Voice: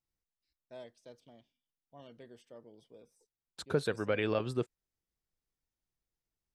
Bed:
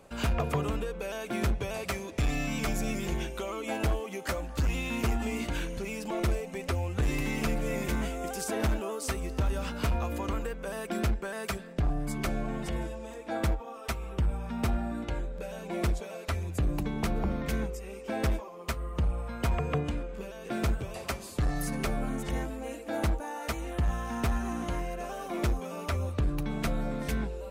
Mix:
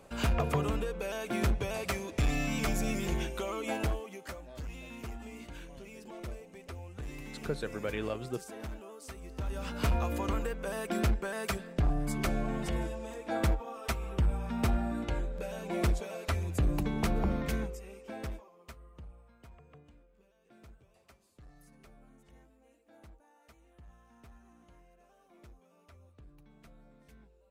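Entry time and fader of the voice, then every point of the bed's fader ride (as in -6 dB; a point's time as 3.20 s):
3.75 s, -4.0 dB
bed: 3.69 s -0.5 dB
4.48 s -13.5 dB
9.14 s -13.5 dB
9.87 s 0 dB
17.37 s 0 dB
19.55 s -27 dB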